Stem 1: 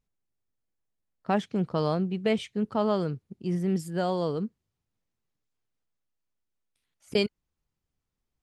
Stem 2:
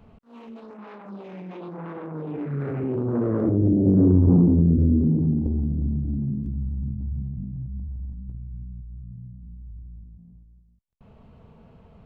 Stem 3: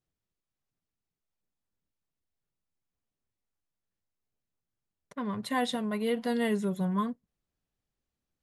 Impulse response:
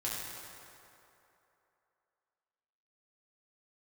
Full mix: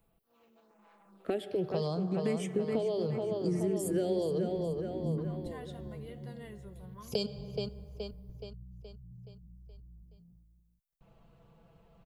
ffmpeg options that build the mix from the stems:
-filter_complex "[0:a]equalizer=frequency=390:width_type=o:width=1.6:gain=10,asplit=2[link_01][link_02];[link_02]afreqshift=0.75[link_03];[link_01][link_03]amix=inputs=2:normalize=1,volume=1.5dB,asplit=3[link_04][link_05][link_06];[link_05]volume=-21dB[link_07];[link_06]volume=-11.5dB[link_08];[1:a]aecho=1:1:6:0.81,volume=-11dB,afade=type=in:start_time=4.87:duration=0.25:silence=0.298538[link_09];[2:a]volume=-20dB,asplit=3[link_10][link_11][link_12];[link_11]volume=-17dB[link_13];[link_12]apad=whole_len=531784[link_14];[link_09][link_14]sidechaincompress=threshold=-54dB:ratio=8:attack=16:release=390[link_15];[link_04][link_15]amix=inputs=2:normalize=0,aemphasis=mode=production:type=50kf,acompressor=threshold=-26dB:ratio=6,volume=0dB[link_16];[3:a]atrim=start_sample=2205[link_17];[link_07][link_13]amix=inputs=2:normalize=0[link_18];[link_18][link_17]afir=irnorm=-1:irlink=0[link_19];[link_08]aecho=0:1:423|846|1269|1692|2115|2538|2961:1|0.5|0.25|0.125|0.0625|0.0312|0.0156[link_20];[link_10][link_16][link_19][link_20]amix=inputs=4:normalize=0,equalizer=frequency=200:width=1.6:gain=-4.5,acrossover=split=420|3000[link_21][link_22][link_23];[link_22]acompressor=threshold=-38dB:ratio=6[link_24];[link_21][link_24][link_23]amix=inputs=3:normalize=0"

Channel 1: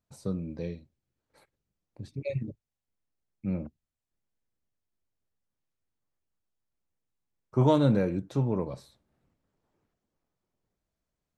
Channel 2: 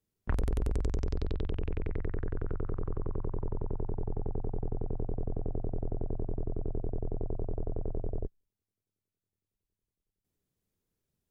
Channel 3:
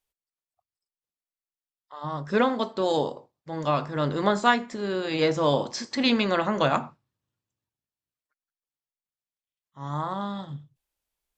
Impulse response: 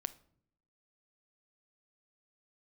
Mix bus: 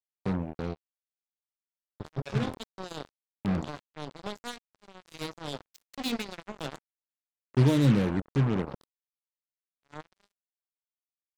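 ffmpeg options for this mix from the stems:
-filter_complex "[0:a]volume=1dB,asplit=3[link_01][link_02][link_03];[link_02]volume=-12.5dB[link_04];[1:a]acontrast=77,highpass=frequency=250:width=0.5412,highpass=frequency=250:width=1.3066,adelay=2150,volume=-9.5dB,asplit=2[link_05][link_06];[link_06]volume=-21dB[link_07];[2:a]bandreject=frequency=1200:width=5.1,dynaudnorm=framelen=320:gausssize=9:maxgain=11dB,volume=-16dB,asplit=2[link_08][link_09];[link_09]volume=-23.5dB[link_10];[link_03]apad=whole_len=593309[link_11];[link_05][link_11]sidechaingate=range=-33dB:threshold=-51dB:ratio=16:detection=peak[link_12];[3:a]atrim=start_sample=2205[link_13];[link_04][link_07][link_10]amix=inputs=3:normalize=0[link_14];[link_14][link_13]afir=irnorm=-1:irlink=0[link_15];[link_01][link_12][link_08][link_15]amix=inputs=4:normalize=0,acrossover=split=380|3000[link_16][link_17][link_18];[link_17]acompressor=threshold=-50dB:ratio=2[link_19];[link_16][link_19][link_18]amix=inputs=3:normalize=0,acrusher=bits=4:mix=0:aa=0.5"

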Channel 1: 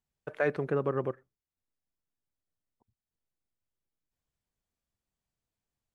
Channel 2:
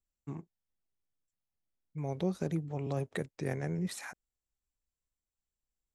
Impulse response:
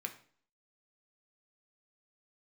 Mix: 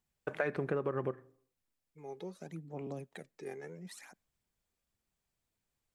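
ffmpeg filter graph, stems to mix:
-filter_complex "[0:a]aphaser=in_gain=1:out_gain=1:delay=2.6:decay=0.2:speed=1.8:type=triangular,volume=1.5dB,asplit=2[link_01][link_02];[link_02]volume=-9dB[link_03];[1:a]highpass=frequency=170:width=0.5412,highpass=frequency=170:width=1.3066,aphaser=in_gain=1:out_gain=1:delay=2.5:decay=0.61:speed=0.71:type=sinusoidal,volume=-10.5dB,asplit=2[link_04][link_05];[link_05]volume=-24dB[link_06];[2:a]atrim=start_sample=2205[link_07];[link_03][link_06]amix=inputs=2:normalize=0[link_08];[link_08][link_07]afir=irnorm=-1:irlink=0[link_09];[link_01][link_04][link_09]amix=inputs=3:normalize=0,acompressor=threshold=-30dB:ratio=6"

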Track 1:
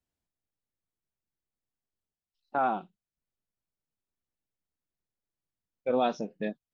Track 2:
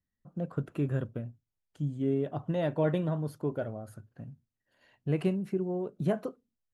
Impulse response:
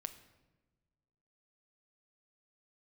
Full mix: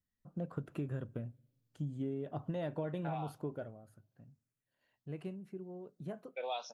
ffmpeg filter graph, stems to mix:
-filter_complex "[0:a]highpass=1100,asplit=2[link_01][link_02];[link_02]afreqshift=1.2[link_03];[link_01][link_03]amix=inputs=2:normalize=1,adelay=500,volume=0dB,asplit=2[link_04][link_05];[link_05]volume=-13dB[link_06];[1:a]volume=-3.5dB,afade=type=out:start_time=3.31:duration=0.46:silence=0.266073,asplit=2[link_07][link_08];[link_08]volume=-19.5dB[link_09];[2:a]atrim=start_sample=2205[link_10];[link_06][link_09]amix=inputs=2:normalize=0[link_11];[link_11][link_10]afir=irnorm=-1:irlink=0[link_12];[link_04][link_07][link_12]amix=inputs=3:normalize=0,acompressor=threshold=-34dB:ratio=12"

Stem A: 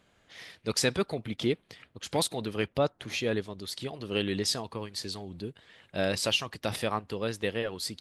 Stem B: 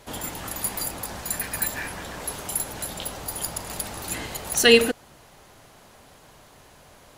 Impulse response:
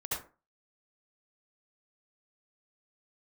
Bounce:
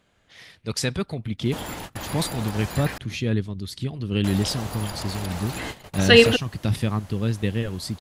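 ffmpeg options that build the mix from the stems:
-filter_complex "[0:a]asubboost=boost=8:cutoff=210,volume=0.5dB,asplit=2[link_01][link_02];[1:a]acrossover=split=4700[link_03][link_04];[link_04]acompressor=threshold=-42dB:ratio=4:attack=1:release=60[link_05];[link_03][link_05]amix=inputs=2:normalize=0,adelay=1450,volume=2dB,asplit=3[link_06][link_07][link_08];[link_06]atrim=end=2.98,asetpts=PTS-STARTPTS,afade=type=out:start_time=2.976:duration=0.004:curve=hsin[link_09];[link_07]atrim=start=2.98:end=4.24,asetpts=PTS-STARTPTS,volume=0[link_10];[link_08]atrim=start=4.24,asetpts=PTS-STARTPTS,afade=type=in:duration=0.004:curve=hsin[link_11];[link_09][link_10][link_11]concat=n=3:v=0:a=1[link_12];[link_02]apad=whole_len=380159[link_13];[link_12][link_13]sidechaingate=range=-33dB:threshold=-50dB:ratio=16:detection=peak[link_14];[link_01][link_14]amix=inputs=2:normalize=0"

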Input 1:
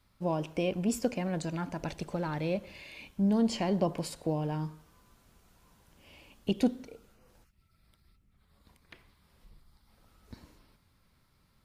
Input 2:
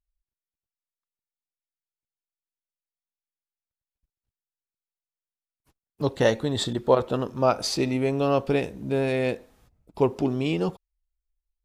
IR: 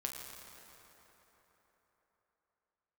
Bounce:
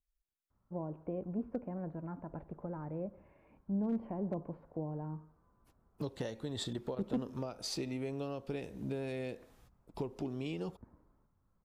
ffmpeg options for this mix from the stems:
-filter_complex "[0:a]lowpass=frequency=1300:width=0.5412,lowpass=frequency=1300:width=1.3066,adelay=500,volume=-7.5dB[link_01];[1:a]acompressor=threshold=-31dB:ratio=8,volume=-4dB[link_02];[link_01][link_02]amix=inputs=2:normalize=0,acrossover=split=500|3000[link_03][link_04][link_05];[link_04]acompressor=threshold=-47dB:ratio=2.5[link_06];[link_03][link_06][link_05]amix=inputs=3:normalize=0,asoftclip=type=hard:threshold=-27dB"

